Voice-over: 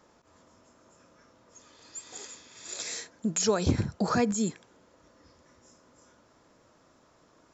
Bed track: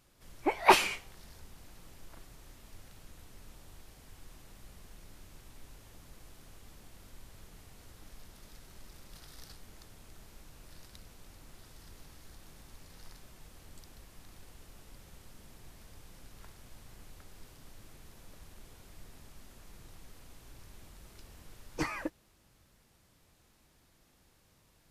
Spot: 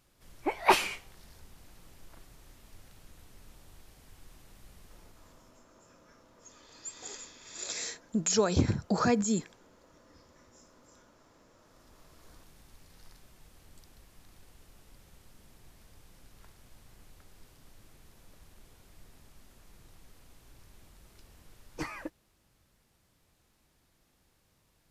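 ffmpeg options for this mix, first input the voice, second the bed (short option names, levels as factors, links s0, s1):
-filter_complex "[0:a]adelay=4900,volume=0.944[s0];[1:a]volume=4.73,afade=t=out:st=4.83:d=0.83:silence=0.141254,afade=t=in:st=11.58:d=0.73:silence=0.177828[s1];[s0][s1]amix=inputs=2:normalize=0"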